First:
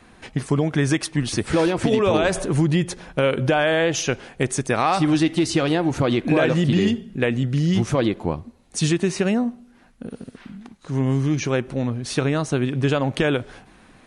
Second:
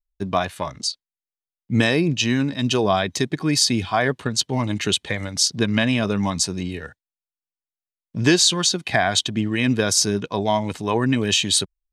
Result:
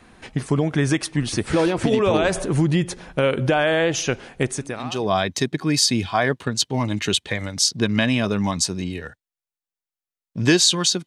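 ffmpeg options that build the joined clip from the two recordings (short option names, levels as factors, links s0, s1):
-filter_complex "[0:a]apad=whole_dur=11.06,atrim=end=11.06,atrim=end=5.18,asetpts=PTS-STARTPTS[s0];[1:a]atrim=start=2.23:end=8.85,asetpts=PTS-STARTPTS[s1];[s0][s1]acrossfade=d=0.74:c1=qua:c2=qua"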